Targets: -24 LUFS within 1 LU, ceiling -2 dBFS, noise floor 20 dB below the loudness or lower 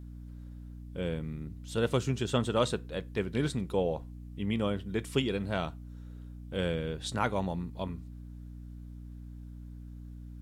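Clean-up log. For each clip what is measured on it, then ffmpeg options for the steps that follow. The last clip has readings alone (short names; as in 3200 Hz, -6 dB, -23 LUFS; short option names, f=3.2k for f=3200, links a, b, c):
hum 60 Hz; harmonics up to 300 Hz; hum level -41 dBFS; loudness -33.0 LUFS; peak -13.5 dBFS; loudness target -24.0 LUFS
-> -af "bandreject=f=60:t=h:w=4,bandreject=f=120:t=h:w=4,bandreject=f=180:t=h:w=4,bandreject=f=240:t=h:w=4,bandreject=f=300:t=h:w=4"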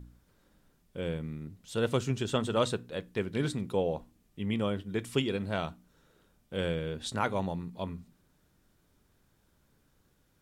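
hum none; loudness -33.5 LUFS; peak -14.0 dBFS; loudness target -24.0 LUFS
-> -af "volume=9.5dB"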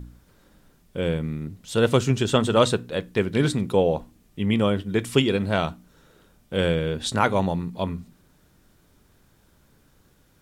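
loudness -24.0 LUFS; peak -4.5 dBFS; noise floor -60 dBFS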